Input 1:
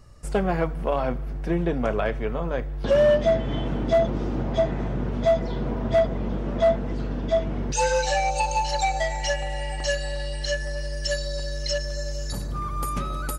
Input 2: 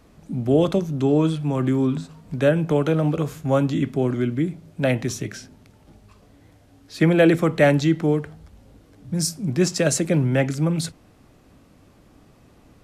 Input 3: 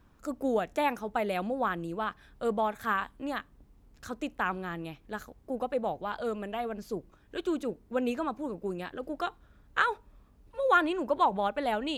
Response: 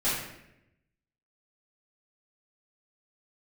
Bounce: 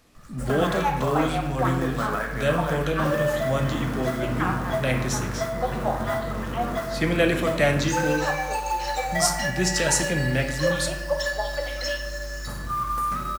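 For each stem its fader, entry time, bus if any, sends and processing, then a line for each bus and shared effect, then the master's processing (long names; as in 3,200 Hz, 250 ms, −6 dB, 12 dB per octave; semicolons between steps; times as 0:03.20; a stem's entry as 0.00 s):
−6.0 dB, 0.15 s, send −9.5 dB, flat-topped bell 1,400 Hz +10.5 dB 1.2 octaves; downward compressor 6 to 1, threshold −21 dBFS, peak gain reduction 7.5 dB; floating-point word with a short mantissa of 2 bits
−4.0 dB, 0.00 s, send −14.5 dB, tilt shelving filter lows −5 dB, about 1,400 Hz
−13.5 dB, 0.00 s, send −10 dB, auto-filter high-pass sine 4.2 Hz 540–4,400 Hz; automatic gain control gain up to 11 dB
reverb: on, RT60 0.85 s, pre-delay 4 ms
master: no processing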